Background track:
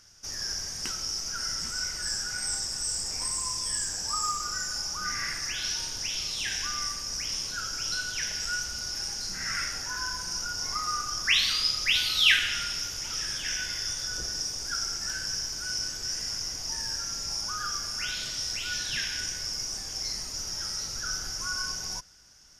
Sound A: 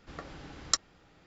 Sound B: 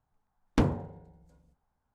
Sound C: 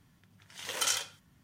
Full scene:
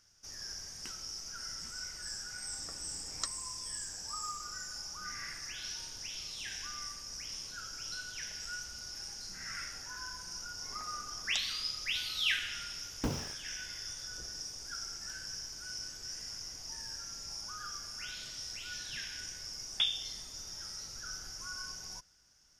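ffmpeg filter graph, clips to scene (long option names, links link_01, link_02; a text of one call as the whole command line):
ffmpeg -i bed.wav -i cue0.wav -i cue1.wav -filter_complex "[1:a]asplit=2[link_01][link_02];[2:a]asplit=2[link_03][link_04];[0:a]volume=-10.5dB[link_05];[link_02]aeval=exprs='val(0)*sin(2*PI*520*n/s+520*0.5/3.7*sin(2*PI*3.7*n/s))':channel_layout=same[link_06];[link_03]acrusher=bits=5:mix=0:aa=0.000001[link_07];[link_04]lowpass=frequency=3100:width_type=q:width=0.5098,lowpass=frequency=3100:width_type=q:width=0.6013,lowpass=frequency=3100:width_type=q:width=0.9,lowpass=frequency=3100:width_type=q:width=2.563,afreqshift=-3700[link_08];[link_01]atrim=end=1.26,asetpts=PTS-STARTPTS,volume=-10.5dB,afade=type=in:duration=0.004:curve=hsin,afade=type=out:start_time=1.256:duration=0.004:curve=hsin,adelay=2500[link_09];[link_06]atrim=end=1.26,asetpts=PTS-STARTPTS,volume=-11.5dB,afade=type=in:duration=0.004:curve=hsin,afade=type=out:start_time=1.256:duration=0.004:curve=hsin,adelay=10620[link_10];[link_07]atrim=end=1.94,asetpts=PTS-STARTPTS,volume=-10dB,afade=type=in:duration=0.004:curve=hsin,afade=type=out:start_time=1.936:duration=0.004:curve=hsin,adelay=12460[link_11];[link_08]atrim=end=1.94,asetpts=PTS-STARTPTS,volume=-7dB,afade=type=in:duration=0.004:curve=hsin,afade=type=out:start_time=1.936:duration=0.004:curve=hsin,adelay=19220[link_12];[link_05][link_09][link_10][link_11][link_12]amix=inputs=5:normalize=0" out.wav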